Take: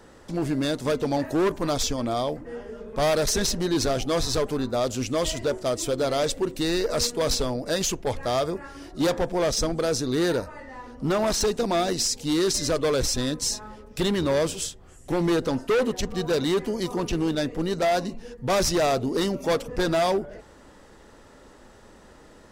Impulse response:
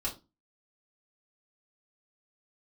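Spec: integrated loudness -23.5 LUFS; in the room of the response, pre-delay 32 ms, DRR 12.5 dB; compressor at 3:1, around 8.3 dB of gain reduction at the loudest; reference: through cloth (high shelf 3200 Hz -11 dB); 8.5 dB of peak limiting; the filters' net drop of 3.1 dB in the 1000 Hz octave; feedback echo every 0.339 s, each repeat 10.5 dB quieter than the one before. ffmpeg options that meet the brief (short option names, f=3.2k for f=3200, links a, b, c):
-filter_complex "[0:a]equalizer=f=1k:t=o:g=-3.5,acompressor=threshold=-32dB:ratio=3,alimiter=level_in=6.5dB:limit=-24dB:level=0:latency=1,volume=-6.5dB,aecho=1:1:339|678|1017:0.299|0.0896|0.0269,asplit=2[a][b];[1:a]atrim=start_sample=2205,adelay=32[c];[b][c]afir=irnorm=-1:irlink=0,volume=-16dB[d];[a][d]amix=inputs=2:normalize=0,highshelf=f=3.2k:g=-11,volume=14.5dB"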